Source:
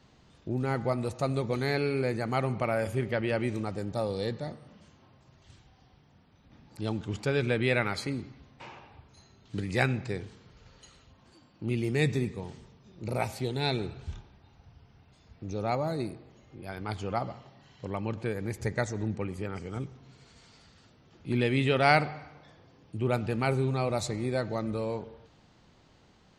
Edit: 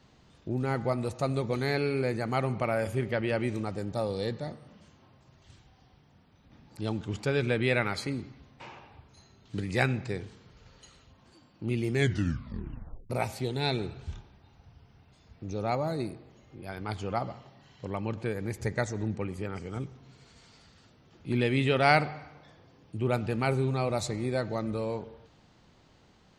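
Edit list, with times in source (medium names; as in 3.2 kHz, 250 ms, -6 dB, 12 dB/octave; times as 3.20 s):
11.92 s: tape stop 1.18 s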